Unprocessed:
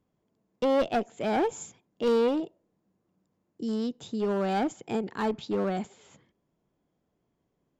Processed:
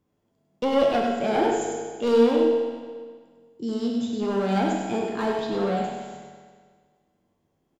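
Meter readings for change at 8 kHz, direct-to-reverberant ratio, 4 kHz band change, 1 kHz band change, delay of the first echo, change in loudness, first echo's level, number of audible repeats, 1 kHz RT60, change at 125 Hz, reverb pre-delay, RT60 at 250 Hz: n/a, -2.0 dB, +5.5 dB, +5.0 dB, 0.1 s, +4.5 dB, -5.5 dB, 1, 1.7 s, +5.0 dB, 9 ms, 1.7 s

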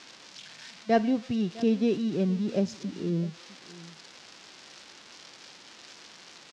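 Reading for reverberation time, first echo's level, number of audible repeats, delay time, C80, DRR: none, -19.5 dB, 1, 0.656 s, none, none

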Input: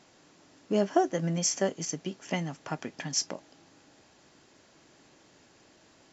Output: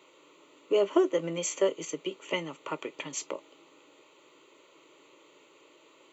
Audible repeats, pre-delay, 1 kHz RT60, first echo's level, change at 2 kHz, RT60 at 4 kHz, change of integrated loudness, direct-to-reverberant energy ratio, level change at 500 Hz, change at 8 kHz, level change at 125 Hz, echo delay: none, none, none, none, +0.5 dB, none, -0.5 dB, none, +3.5 dB, n/a, -11.0 dB, none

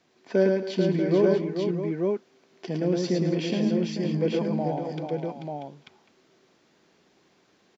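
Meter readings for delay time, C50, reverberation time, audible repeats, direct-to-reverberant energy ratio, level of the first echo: 0.11 s, none, none, 6, none, -3.5 dB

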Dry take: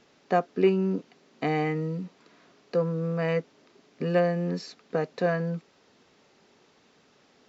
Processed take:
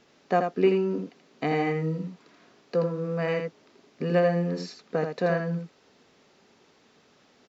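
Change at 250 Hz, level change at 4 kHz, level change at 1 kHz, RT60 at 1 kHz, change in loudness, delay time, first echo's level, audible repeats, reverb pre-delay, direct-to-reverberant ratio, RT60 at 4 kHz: 0.0 dB, +1.0 dB, +1.0 dB, none, +0.5 dB, 82 ms, -6.0 dB, 1, none, none, none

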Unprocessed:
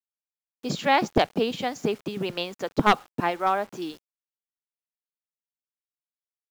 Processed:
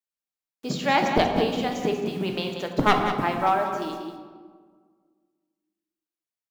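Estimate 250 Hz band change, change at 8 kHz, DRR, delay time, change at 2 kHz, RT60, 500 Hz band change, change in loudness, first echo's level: +2.0 dB, 0.0 dB, 2.0 dB, 0.188 s, +1.0 dB, 1.7 s, +1.5 dB, +1.0 dB, -9.0 dB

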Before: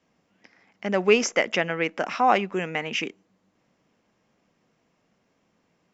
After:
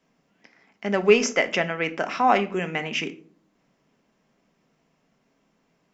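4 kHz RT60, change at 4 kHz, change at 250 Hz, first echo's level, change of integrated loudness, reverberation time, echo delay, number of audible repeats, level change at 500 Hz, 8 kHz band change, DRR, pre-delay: 0.30 s, 0.0 dB, +1.5 dB, none, +1.0 dB, 0.45 s, none, none, +1.5 dB, n/a, 8.0 dB, 3 ms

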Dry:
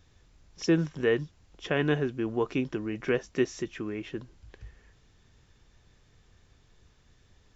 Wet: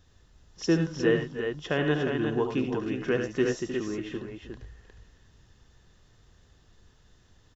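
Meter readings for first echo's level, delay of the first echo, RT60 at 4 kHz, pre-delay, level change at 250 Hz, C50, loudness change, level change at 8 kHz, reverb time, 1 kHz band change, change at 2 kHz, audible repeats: -8.0 dB, 72 ms, none, none, +2.0 dB, none, +1.5 dB, n/a, none, +2.0 dB, +1.5 dB, 4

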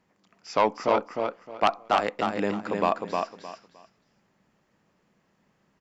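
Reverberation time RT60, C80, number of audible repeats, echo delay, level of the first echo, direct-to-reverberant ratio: none, none, 3, 0.308 s, -4.0 dB, none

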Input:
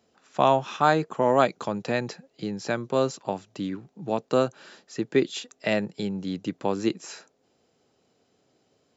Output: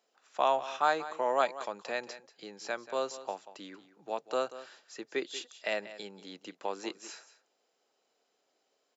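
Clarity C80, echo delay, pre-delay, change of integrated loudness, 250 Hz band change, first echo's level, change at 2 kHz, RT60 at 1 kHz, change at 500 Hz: none, 0.186 s, none, -7.5 dB, -17.5 dB, -15.0 dB, -5.5 dB, none, -8.5 dB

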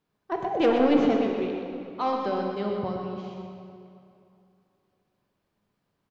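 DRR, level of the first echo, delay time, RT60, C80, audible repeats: 0.0 dB, -7.0 dB, 0.124 s, 2.7 s, 2.0 dB, 1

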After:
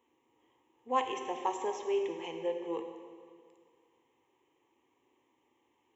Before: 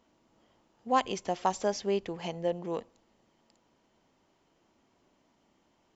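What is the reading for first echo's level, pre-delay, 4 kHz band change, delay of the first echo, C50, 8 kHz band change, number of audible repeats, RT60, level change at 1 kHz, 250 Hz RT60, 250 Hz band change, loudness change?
none, 5 ms, -5.0 dB, none, 6.0 dB, n/a, none, 2.1 s, -3.0 dB, 1.9 s, -5.0 dB, -3.0 dB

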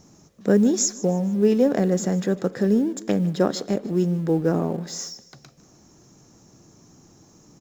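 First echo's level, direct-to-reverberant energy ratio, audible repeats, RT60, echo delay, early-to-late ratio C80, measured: -19.0 dB, none, 3, none, 0.152 s, none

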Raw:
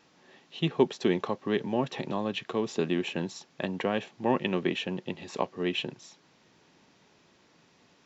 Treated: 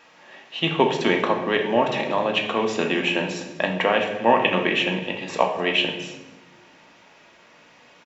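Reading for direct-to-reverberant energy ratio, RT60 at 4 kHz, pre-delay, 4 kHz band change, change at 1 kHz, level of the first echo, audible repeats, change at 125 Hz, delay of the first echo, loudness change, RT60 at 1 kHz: 2.0 dB, 0.80 s, 3 ms, +11.5 dB, +12.0 dB, -20.0 dB, 1, +3.0 dB, 0.255 s, +8.5 dB, 0.85 s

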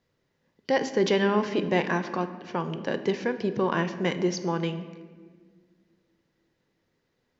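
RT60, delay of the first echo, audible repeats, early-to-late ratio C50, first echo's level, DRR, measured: 1.6 s, none, none, 11.0 dB, none, 9.0 dB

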